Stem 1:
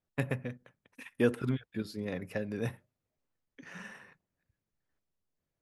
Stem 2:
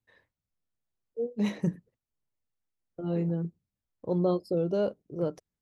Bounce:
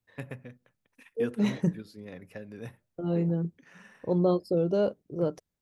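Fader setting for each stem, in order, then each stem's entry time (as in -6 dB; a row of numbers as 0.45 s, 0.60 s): -7.0 dB, +2.0 dB; 0.00 s, 0.00 s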